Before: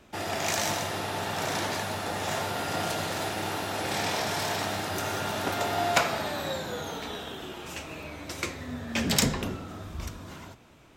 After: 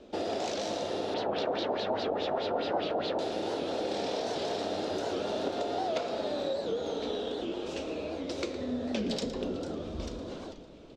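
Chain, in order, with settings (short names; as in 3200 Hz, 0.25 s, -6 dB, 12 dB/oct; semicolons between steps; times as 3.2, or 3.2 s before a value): ten-band EQ 125 Hz -12 dB, 250 Hz +6 dB, 500 Hz +12 dB, 1000 Hz -5 dB, 2000 Hz -8 dB, 4000 Hz +6 dB; frequency-shifting echo 0.447 s, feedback 58%, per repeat -72 Hz, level -23.5 dB; compressor 6:1, threshold -29 dBFS, peak gain reduction 13 dB; air absorption 110 m; echo 0.113 s -13.5 dB; 1.14–3.19 LFO low-pass sine 4.8 Hz 850–4400 Hz; record warp 78 rpm, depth 160 cents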